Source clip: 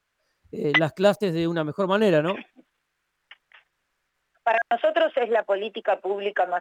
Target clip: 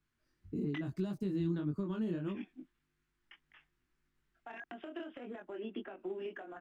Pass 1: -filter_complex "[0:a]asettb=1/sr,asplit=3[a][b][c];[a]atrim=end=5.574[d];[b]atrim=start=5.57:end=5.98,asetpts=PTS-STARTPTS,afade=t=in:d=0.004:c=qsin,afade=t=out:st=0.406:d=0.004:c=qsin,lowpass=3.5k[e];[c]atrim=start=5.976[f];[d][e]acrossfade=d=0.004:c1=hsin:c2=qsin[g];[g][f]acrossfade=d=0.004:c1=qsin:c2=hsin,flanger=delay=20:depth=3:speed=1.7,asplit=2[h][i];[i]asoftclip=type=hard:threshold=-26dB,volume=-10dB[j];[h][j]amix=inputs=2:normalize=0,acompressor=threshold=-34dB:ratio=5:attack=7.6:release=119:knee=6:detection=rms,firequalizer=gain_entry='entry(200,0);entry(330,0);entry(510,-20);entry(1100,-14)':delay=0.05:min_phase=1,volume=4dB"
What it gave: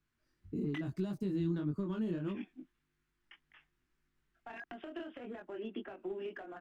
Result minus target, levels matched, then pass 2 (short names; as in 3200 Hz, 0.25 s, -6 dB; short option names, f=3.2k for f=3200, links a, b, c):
hard clip: distortion +20 dB
-filter_complex "[0:a]asettb=1/sr,asplit=3[a][b][c];[a]atrim=end=5.574[d];[b]atrim=start=5.57:end=5.98,asetpts=PTS-STARTPTS,afade=t=in:d=0.004:c=qsin,afade=t=out:st=0.406:d=0.004:c=qsin,lowpass=3.5k[e];[c]atrim=start=5.976[f];[d][e]acrossfade=d=0.004:c1=hsin:c2=qsin[g];[g][f]acrossfade=d=0.004:c1=qsin:c2=hsin,flanger=delay=20:depth=3:speed=1.7,asplit=2[h][i];[i]asoftclip=type=hard:threshold=-14.5dB,volume=-10dB[j];[h][j]amix=inputs=2:normalize=0,acompressor=threshold=-34dB:ratio=5:attack=7.6:release=119:knee=6:detection=rms,firequalizer=gain_entry='entry(200,0);entry(330,0);entry(510,-20);entry(1100,-14)':delay=0.05:min_phase=1,volume=4dB"